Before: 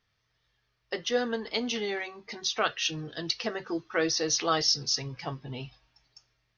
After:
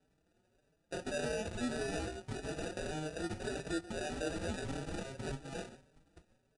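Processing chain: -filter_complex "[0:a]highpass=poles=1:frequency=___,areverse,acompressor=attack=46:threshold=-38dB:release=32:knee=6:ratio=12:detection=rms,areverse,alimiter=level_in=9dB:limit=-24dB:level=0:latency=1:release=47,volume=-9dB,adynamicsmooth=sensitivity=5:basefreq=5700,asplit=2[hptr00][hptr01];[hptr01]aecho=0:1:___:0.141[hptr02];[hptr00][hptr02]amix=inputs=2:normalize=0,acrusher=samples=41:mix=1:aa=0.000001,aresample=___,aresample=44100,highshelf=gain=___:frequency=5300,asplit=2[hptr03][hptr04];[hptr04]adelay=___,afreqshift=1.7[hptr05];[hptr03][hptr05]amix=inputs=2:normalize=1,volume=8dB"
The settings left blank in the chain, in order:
590, 136, 22050, 3, 4.8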